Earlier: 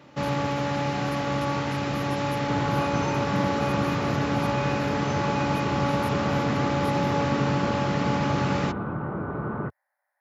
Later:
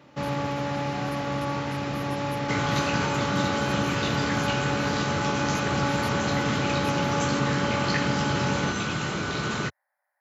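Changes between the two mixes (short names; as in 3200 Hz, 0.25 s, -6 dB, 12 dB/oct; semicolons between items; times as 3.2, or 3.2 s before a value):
first sound: send -11.0 dB; second sound: remove LPF 1200 Hz 24 dB/oct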